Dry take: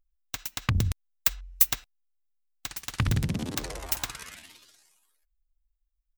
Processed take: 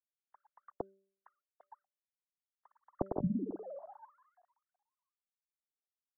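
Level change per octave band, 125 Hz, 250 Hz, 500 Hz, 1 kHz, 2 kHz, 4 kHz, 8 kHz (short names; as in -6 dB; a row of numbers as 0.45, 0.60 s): -16.5 dB, -3.5 dB, +0.5 dB, -8.5 dB, under -35 dB, under -40 dB, under -40 dB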